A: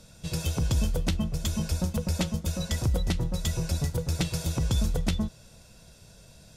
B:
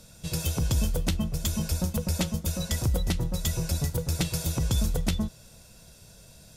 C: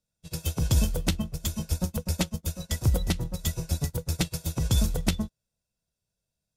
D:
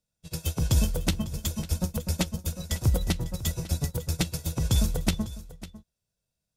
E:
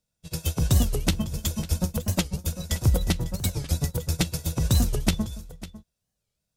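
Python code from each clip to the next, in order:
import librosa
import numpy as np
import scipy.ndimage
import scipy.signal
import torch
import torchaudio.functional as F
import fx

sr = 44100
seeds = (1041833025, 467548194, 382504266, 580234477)

y1 = fx.high_shelf(x, sr, hz=11000.0, db=12.0)
y2 = fx.upward_expand(y1, sr, threshold_db=-47.0, expansion=2.5)
y2 = F.gain(torch.from_numpy(y2), 4.5).numpy()
y3 = y2 + 10.0 ** (-16.5 / 20.0) * np.pad(y2, (int(550 * sr / 1000.0), 0))[:len(y2)]
y4 = fx.record_warp(y3, sr, rpm=45.0, depth_cents=250.0)
y4 = F.gain(torch.from_numpy(y4), 2.5).numpy()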